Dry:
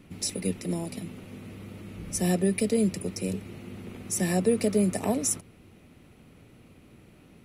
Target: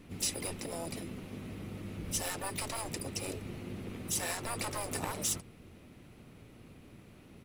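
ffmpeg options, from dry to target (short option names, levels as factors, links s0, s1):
-filter_complex "[0:a]volume=11.9,asoftclip=hard,volume=0.0841,afftfilt=real='re*lt(hypot(re,im),0.126)':imag='im*lt(hypot(re,im),0.126)':win_size=1024:overlap=0.75,asplit=4[s0][s1][s2][s3];[s1]asetrate=22050,aresample=44100,atempo=2,volume=0.316[s4];[s2]asetrate=37084,aresample=44100,atempo=1.18921,volume=0.224[s5];[s3]asetrate=66075,aresample=44100,atempo=0.66742,volume=0.282[s6];[s0][s4][s5][s6]amix=inputs=4:normalize=0,volume=0.841"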